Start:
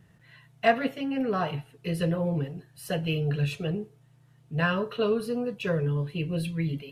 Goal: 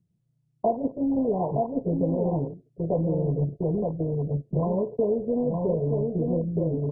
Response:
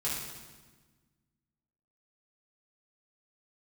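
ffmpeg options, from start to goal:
-filter_complex "[0:a]afftdn=nr=13:nf=-49,asuperstop=centerf=2000:order=8:qfactor=0.62,equalizer=f=100:t=o:w=2.5:g=-14.5,aecho=1:1:918:0.562,agate=range=0.158:threshold=0.00708:ratio=16:detection=peak,highpass=52,tiltshelf=f=680:g=9,acrossover=split=640|4300[s0][s1][s2];[s1]aeval=exprs='val(0)*gte(abs(val(0)),0.00316)':c=same[s3];[s0][s3][s2]amix=inputs=3:normalize=0,acompressor=threshold=0.0282:ratio=5,volume=2.82" -ar 22050 -c:a mp2 -b:a 8k

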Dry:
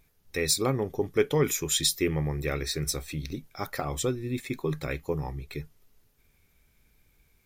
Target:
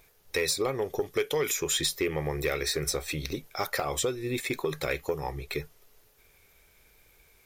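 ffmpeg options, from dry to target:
-filter_complex "[0:a]lowshelf=f=330:t=q:w=1.5:g=-8,acrossover=split=2300|7500[s0][s1][s2];[s0]acompressor=threshold=0.02:ratio=4[s3];[s1]acompressor=threshold=0.0112:ratio=4[s4];[s2]acompressor=threshold=0.00631:ratio=4[s5];[s3][s4][s5]amix=inputs=3:normalize=0,asoftclip=type=tanh:threshold=0.0562,volume=2.51"

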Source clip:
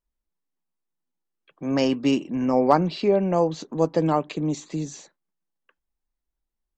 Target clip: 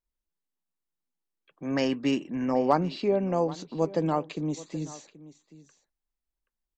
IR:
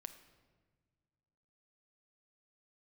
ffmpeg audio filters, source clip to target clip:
-filter_complex "[0:a]asettb=1/sr,asplit=3[s0][s1][s2];[s0]atrim=end=1.654[s3];[s1]atrim=start=1.65:end=2.53,asetpts=PTS-STARTPTS,afade=t=in:d=0.004:c=qsin,afade=t=out:st=0.876:d=0.004:c=qsin,equalizer=f=1800:w=2.5:g=8[s4];[s2]atrim=start=2.526[s5];[s3][s4]acrossfade=d=0.004:c1=hsin:c2=qsin[s6];[s6][s5]acrossfade=d=0.004:c1=qsin:c2=hsin,aecho=1:1:779:0.119,volume=0.562"

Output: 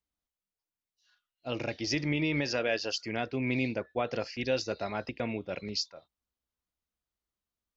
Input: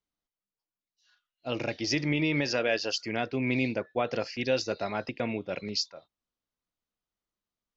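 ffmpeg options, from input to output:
-af "equalizer=f=63:t=o:w=0.53:g=14.5,volume=0.75"

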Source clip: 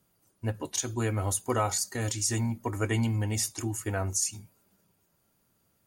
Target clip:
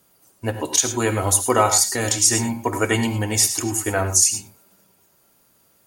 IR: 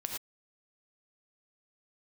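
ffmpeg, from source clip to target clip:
-filter_complex "[0:a]bass=f=250:g=-8,treble=f=4000:g=2,asplit=2[s0][s1];[1:a]atrim=start_sample=2205[s2];[s1][s2]afir=irnorm=-1:irlink=0,volume=0.794[s3];[s0][s3]amix=inputs=2:normalize=0,volume=2.11"

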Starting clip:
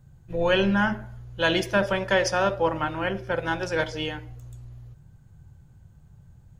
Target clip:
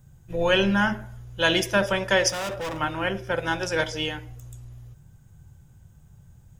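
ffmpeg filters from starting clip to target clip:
-filter_complex "[0:a]asettb=1/sr,asplit=3[s0][s1][s2];[s0]atrim=end=2.294[s3];[s1]atrim=start=2.29:end=2.79,asetpts=PTS-STARTPTS,afade=t=in:d=0.004:c=qsin,afade=t=out:st=0.496:d=0.004:c=qsin,asoftclip=type=hard:threshold=0.0355[s4];[s2]atrim=start=2.786[s5];[s3][s4]acrossfade=d=0.004:c1=hsin:c2=qsin[s6];[s6][s5]acrossfade=d=0.004:c1=qsin:c2=hsin,highshelf=f=3700:g=9.5,bandreject=f=4300:w=7.8"

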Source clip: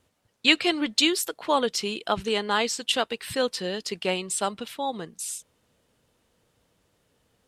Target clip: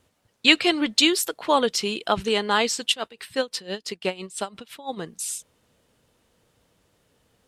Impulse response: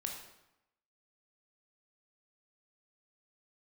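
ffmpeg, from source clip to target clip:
-filter_complex "[0:a]asplit=3[s0][s1][s2];[s0]afade=t=out:st=2.92:d=0.02[s3];[s1]aeval=exprs='val(0)*pow(10,-19*(0.5-0.5*cos(2*PI*5.9*n/s))/20)':c=same,afade=t=in:st=2.92:d=0.02,afade=t=out:st=4.96:d=0.02[s4];[s2]afade=t=in:st=4.96:d=0.02[s5];[s3][s4][s5]amix=inputs=3:normalize=0,volume=1.41"

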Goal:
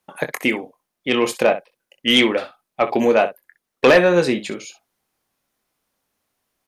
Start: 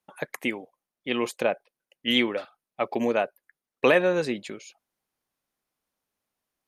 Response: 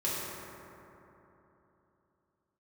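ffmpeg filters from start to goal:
-af "aecho=1:1:23|63:0.355|0.2,aeval=exprs='0.531*sin(PI/2*1.78*val(0)/0.531)':c=same"

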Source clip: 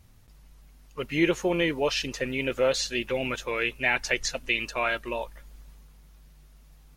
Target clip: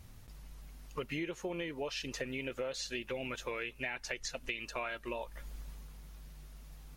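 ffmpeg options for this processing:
-af "acompressor=threshold=0.0126:ratio=10,volume=1.33"

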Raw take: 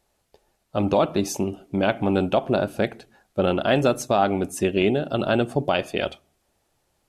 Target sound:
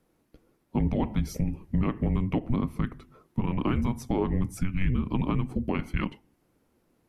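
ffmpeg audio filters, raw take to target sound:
-af "equalizer=f=125:t=o:w=1:g=4,equalizer=f=250:t=o:w=1:g=4,equalizer=f=1000:t=o:w=1:g=4,equalizer=f=4000:t=o:w=1:g=-6,equalizer=f=8000:t=o:w=1:g=-9,afreqshift=-370,alimiter=limit=0.158:level=0:latency=1:release=303"

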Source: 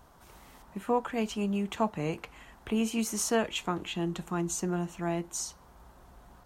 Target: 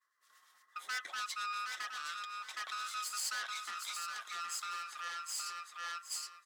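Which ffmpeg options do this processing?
-filter_complex "[0:a]afftfilt=real='real(if(lt(b,960),b+48*(1-2*mod(floor(b/48),2)),b),0)':imag='imag(if(lt(b,960),b+48*(1-2*mod(floor(b/48),2)),b),0)':win_size=2048:overlap=0.75,acrossover=split=1400[s0][s1];[s0]aeval=exprs='val(0)*(1-0.5/2+0.5/2*cos(2*PI*8.6*n/s))':c=same[s2];[s1]aeval=exprs='val(0)*(1-0.5/2-0.5/2*cos(2*PI*8.6*n/s))':c=same[s3];[s2][s3]amix=inputs=2:normalize=0,agate=range=0.0224:threshold=0.00398:ratio=3:detection=peak,aeval=exprs='(tanh(56.2*val(0)+0.8)-tanh(0.8))/56.2':c=same,aecho=1:1:767|1534|2301:0.562|0.112|0.0225,alimiter=level_in=3.16:limit=0.0631:level=0:latency=1:release=273,volume=0.316,highpass=870,equalizer=f=5600:w=1:g=6,volume=1.41"

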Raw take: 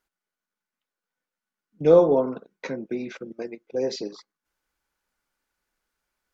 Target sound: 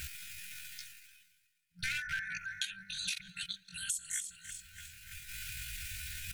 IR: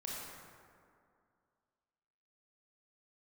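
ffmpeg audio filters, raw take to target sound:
-filter_complex "[0:a]asplit=2[s0][s1];[s1]adelay=311,lowpass=f=2600:p=1,volume=0.119,asplit=2[s2][s3];[s3]adelay=311,lowpass=f=2600:p=1,volume=0.46,asplit=2[s4][s5];[s5]adelay=311,lowpass=f=2600:p=1,volume=0.46,asplit=2[s6][s7];[s7]adelay=311,lowpass=f=2600:p=1,volume=0.46[s8];[s0][s2][s4][s6][s8]amix=inputs=5:normalize=0,areverse,acompressor=mode=upward:threshold=0.0708:ratio=2.5,areverse,volume=5.01,asoftclip=hard,volume=0.2,aecho=1:1:5.5:0.34,afftfilt=real='re*(1-between(b*sr/4096,110,810))':imag='im*(1-between(b*sr/4096,110,810))':win_size=4096:overlap=0.75,equalizer=f=83:t=o:w=2.2:g=8.5,asetrate=74167,aresample=44100,atempo=0.594604,highshelf=f=5000:g=5,acompressor=threshold=0.0141:ratio=10,volume=1.58"

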